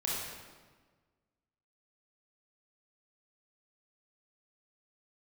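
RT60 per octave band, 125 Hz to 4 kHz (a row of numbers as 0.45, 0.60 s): 1.7, 1.7, 1.5, 1.4, 1.2, 1.1 s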